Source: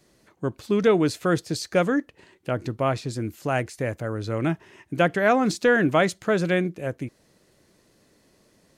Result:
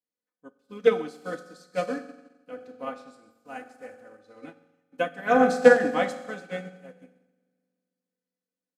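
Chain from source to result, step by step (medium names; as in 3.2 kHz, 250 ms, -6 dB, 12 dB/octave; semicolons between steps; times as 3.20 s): high-pass 270 Hz 6 dB/octave; comb 4 ms, depth 86%; reverberation RT60 2.4 s, pre-delay 3 ms, DRR 1 dB; upward expansion 2.5:1, over -34 dBFS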